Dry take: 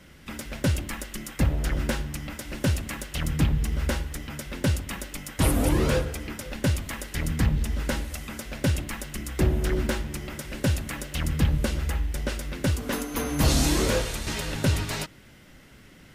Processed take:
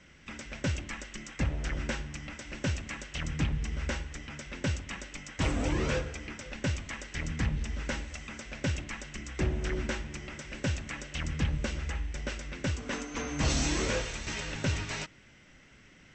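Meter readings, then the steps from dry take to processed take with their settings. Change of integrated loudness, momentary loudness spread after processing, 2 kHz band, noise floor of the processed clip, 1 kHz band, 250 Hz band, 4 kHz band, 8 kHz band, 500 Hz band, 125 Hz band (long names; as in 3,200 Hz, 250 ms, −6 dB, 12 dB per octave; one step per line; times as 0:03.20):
−7.0 dB, 11 LU, −3.0 dB, −57 dBFS, −6.0 dB, −7.5 dB, −5.5 dB, −6.5 dB, −7.0 dB, −7.5 dB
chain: Chebyshev low-pass with heavy ripple 8,000 Hz, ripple 6 dB
level −1.5 dB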